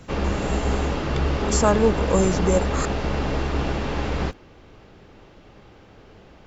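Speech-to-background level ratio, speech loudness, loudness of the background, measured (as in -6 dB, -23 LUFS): 2.0 dB, -23.0 LUFS, -25.0 LUFS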